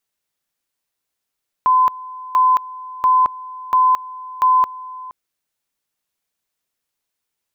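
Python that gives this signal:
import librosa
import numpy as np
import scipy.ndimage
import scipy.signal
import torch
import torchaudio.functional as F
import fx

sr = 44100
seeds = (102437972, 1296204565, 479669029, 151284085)

y = fx.two_level_tone(sr, hz=1020.0, level_db=-10.0, drop_db=19.5, high_s=0.22, low_s=0.47, rounds=5)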